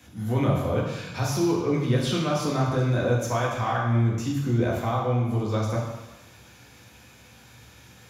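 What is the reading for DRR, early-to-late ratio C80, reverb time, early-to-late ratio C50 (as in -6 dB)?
-3.5 dB, 4.5 dB, 1.0 s, 2.5 dB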